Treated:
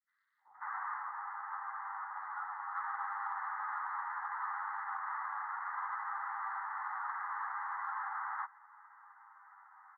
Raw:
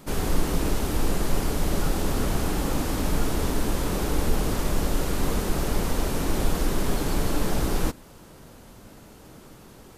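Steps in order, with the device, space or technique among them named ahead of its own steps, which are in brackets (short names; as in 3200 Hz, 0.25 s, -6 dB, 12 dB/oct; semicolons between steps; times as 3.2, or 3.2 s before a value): Chebyshev band-pass 800–2000 Hz, order 5; 0.44–2.21 air absorption 450 m; barber-pole flanger into a guitar amplifier (endless flanger 9.9 ms -0.64 Hz; soft clip -25 dBFS, distortion -37 dB; speaker cabinet 80–4100 Hz, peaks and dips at 180 Hz -9 dB, 1200 Hz +6 dB, 2400 Hz -8 dB); three bands offset in time highs, lows, mids 0.38/0.54 s, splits 530/4500 Hz; gain +1 dB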